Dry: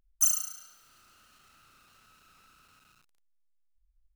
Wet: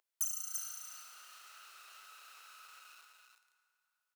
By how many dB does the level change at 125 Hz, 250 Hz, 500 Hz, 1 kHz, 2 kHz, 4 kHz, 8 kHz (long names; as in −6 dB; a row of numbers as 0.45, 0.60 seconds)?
below −30 dB, below −15 dB, −3.0 dB, 0.0 dB, +1.0 dB, −2.5 dB, −9.5 dB